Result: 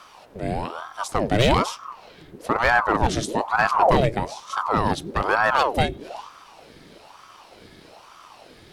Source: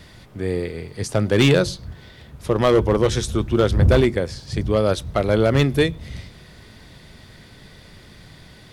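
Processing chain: ring modulator with a swept carrier 710 Hz, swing 70%, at 1.1 Hz

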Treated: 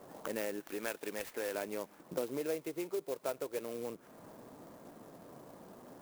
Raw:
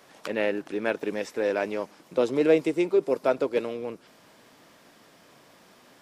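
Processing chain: 0.6–1.55 tilt +3 dB/oct; low-pass opened by the level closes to 790 Hz, open at -23.5 dBFS; compressor 2.5:1, threshold -48 dBFS, peak gain reduction 21.5 dB; 2.37–3.61 bell 240 Hz -7 dB 0.85 oct; clock jitter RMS 0.058 ms; gain +5 dB

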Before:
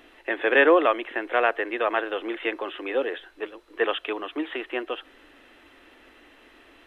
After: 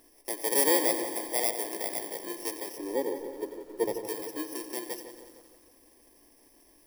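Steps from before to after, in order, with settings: FFT order left unsorted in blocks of 32 samples; 1.71–2.27 ring modulator 32 Hz; 2.78–4.07 tilt shelf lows +10 dB, about 860 Hz; on a send: darkening echo 0.155 s, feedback 62%, low-pass 1600 Hz, level -9 dB; on the sum: lo-fi delay 90 ms, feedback 80%, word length 8-bit, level -13 dB; gain -7 dB

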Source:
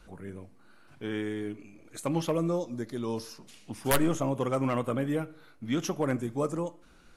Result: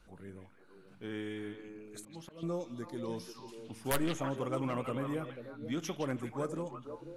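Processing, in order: 1.98–2.43 auto swell 0.488 s; delay with a stepping band-pass 0.163 s, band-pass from 3000 Hz, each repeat -1.4 oct, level -1 dB; gain -7 dB

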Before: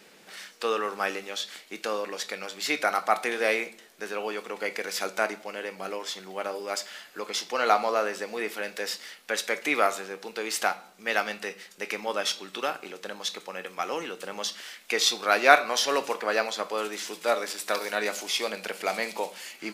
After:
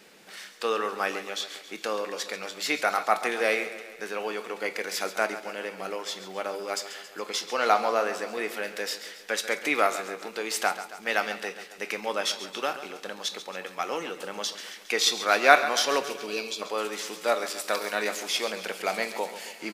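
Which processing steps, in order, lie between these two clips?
spectral gain 16.04–16.62, 460–2200 Hz -19 dB; feedback echo 0.137 s, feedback 58%, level -13 dB

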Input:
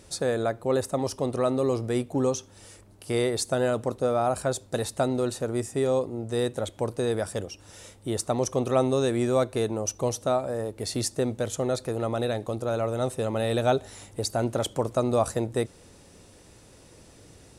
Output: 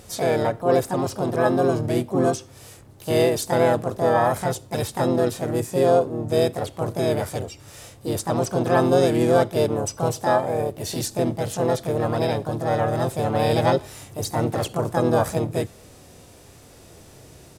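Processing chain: harmoniser -3 st -8 dB, +5 st -2 dB; harmonic-percussive split percussive -7 dB; gain +5 dB

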